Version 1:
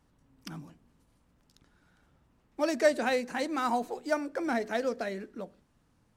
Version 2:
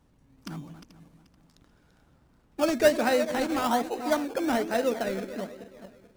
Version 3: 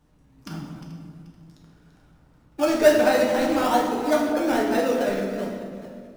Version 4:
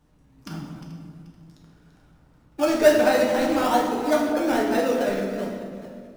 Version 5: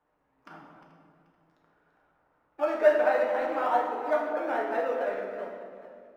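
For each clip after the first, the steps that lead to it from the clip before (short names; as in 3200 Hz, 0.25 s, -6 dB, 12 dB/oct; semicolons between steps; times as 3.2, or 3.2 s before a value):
regenerating reverse delay 0.217 s, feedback 52%, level -10.5 dB; in parallel at -3 dB: decimation with a swept rate 18×, swing 60% 1.2 Hz
reverb RT60 1.8 s, pre-delay 7 ms, DRR -2 dB
nothing audible
three-band isolator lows -23 dB, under 440 Hz, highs -23 dB, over 2200 Hz; gain -2.5 dB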